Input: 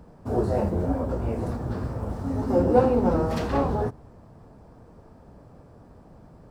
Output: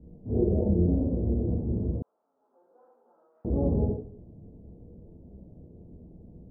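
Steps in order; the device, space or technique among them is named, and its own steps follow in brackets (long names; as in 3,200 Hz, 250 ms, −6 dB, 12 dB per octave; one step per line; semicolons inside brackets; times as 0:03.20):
next room (low-pass filter 450 Hz 24 dB per octave; convolution reverb RT60 0.50 s, pre-delay 22 ms, DRR −6 dB)
0:02.02–0:03.45: Chebyshev band-pass filter 1,300–7,200 Hz, order 3
level −5 dB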